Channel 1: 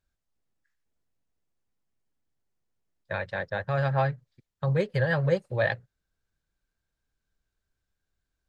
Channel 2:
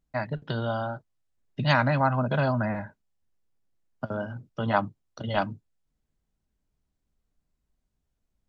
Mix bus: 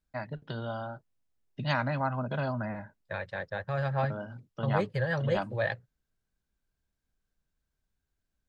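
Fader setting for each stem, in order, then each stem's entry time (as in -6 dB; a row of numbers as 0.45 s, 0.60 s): -4.5 dB, -7.0 dB; 0.00 s, 0.00 s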